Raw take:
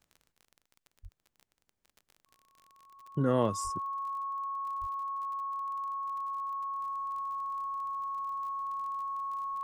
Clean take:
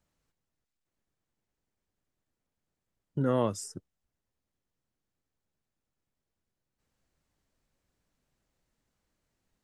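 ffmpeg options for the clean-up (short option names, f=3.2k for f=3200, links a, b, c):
-filter_complex "[0:a]adeclick=t=4,bandreject=f=1.1k:w=30,asplit=3[a][b][c];[a]afade=t=out:st=1.02:d=0.02[d];[b]highpass=f=140:w=0.5412,highpass=f=140:w=1.3066,afade=t=in:st=1.02:d=0.02,afade=t=out:st=1.14:d=0.02[e];[c]afade=t=in:st=1.14:d=0.02[f];[d][e][f]amix=inputs=3:normalize=0,asplit=3[g][h][i];[g]afade=t=out:st=3.63:d=0.02[j];[h]highpass=f=140:w=0.5412,highpass=f=140:w=1.3066,afade=t=in:st=3.63:d=0.02,afade=t=out:st=3.75:d=0.02[k];[i]afade=t=in:st=3.75:d=0.02[l];[j][k][l]amix=inputs=3:normalize=0,asplit=3[m][n][o];[m]afade=t=out:st=4.8:d=0.02[p];[n]highpass=f=140:w=0.5412,highpass=f=140:w=1.3066,afade=t=in:st=4.8:d=0.02,afade=t=out:st=4.92:d=0.02[q];[o]afade=t=in:st=4.92:d=0.02[r];[p][q][r]amix=inputs=3:normalize=0,asetnsamples=n=441:p=0,asendcmd='5.57 volume volume -7.5dB',volume=0dB"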